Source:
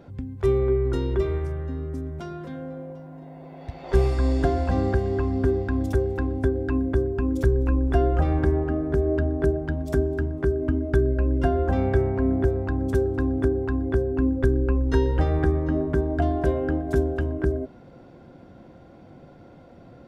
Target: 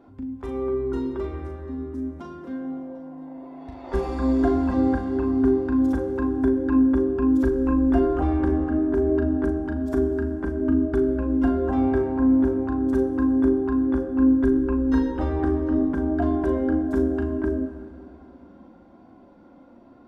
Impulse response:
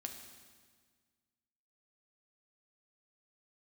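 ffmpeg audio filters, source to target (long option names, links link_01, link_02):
-filter_complex "[0:a]equalizer=frequency=125:width_type=o:width=1:gain=-6,equalizer=frequency=250:width_type=o:width=1:gain=11,equalizer=frequency=1000:width_type=o:width=1:gain=10,dynaudnorm=framelen=210:gausssize=21:maxgain=11.5dB,flanger=delay=2.7:depth=1.2:regen=-42:speed=1.1:shape=triangular,asplit=2[link_01][link_02];[1:a]atrim=start_sample=2205,asetrate=33075,aresample=44100,adelay=38[link_03];[link_02][link_03]afir=irnorm=-1:irlink=0,volume=-3dB[link_04];[link_01][link_04]amix=inputs=2:normalize=0,volume=-6.5dB"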